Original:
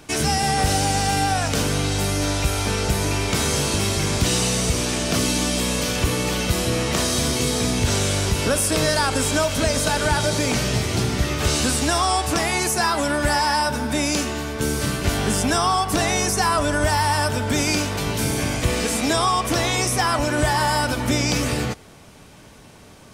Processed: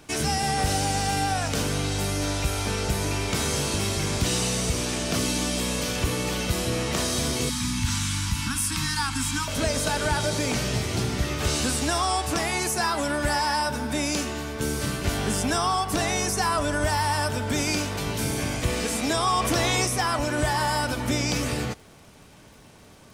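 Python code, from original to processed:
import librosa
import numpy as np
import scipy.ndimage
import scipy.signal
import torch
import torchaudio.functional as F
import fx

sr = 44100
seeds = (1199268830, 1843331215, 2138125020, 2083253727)

y = fx.dmg_crackle(x, sr, seeds[0], per_s=86.0, level_db=-40.0)
y = fx.ellip_bandstop(y, sr, low_hz=280.0, high_hz=920.0, order=3, stop_db=50, at=(7.49, 9.48))
y = fx.env_flatten(y, sr, amount_pct=50, at=(19.25, 19.85), fade=0.02)
y = F.gain(torch.from_numpy(y), -4.5).numpy()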